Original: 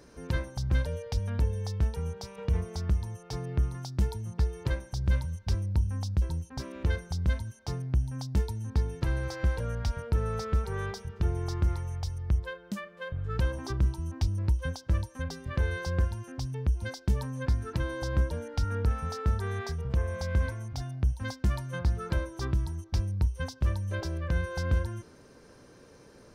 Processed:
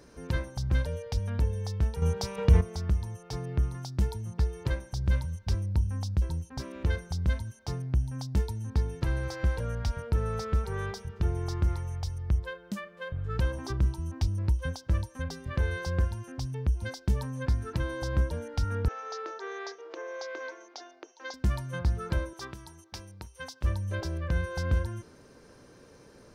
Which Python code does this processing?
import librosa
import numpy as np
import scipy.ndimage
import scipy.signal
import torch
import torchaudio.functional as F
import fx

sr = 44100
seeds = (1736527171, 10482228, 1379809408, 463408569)

y = fx.cheby1_bandpass(x, sr, low_hz=320.0, high_hz=6600.0, order=5, at=(18.88, 21.34))
y = fx.highpass(y, sr, hz=750.0, slope=6, at=(22.33, 23.64))
y = fx.edit(y, sr, fx.clip_gain(start_s=2.02, length_s=0.59, db=8.0), tone=tone)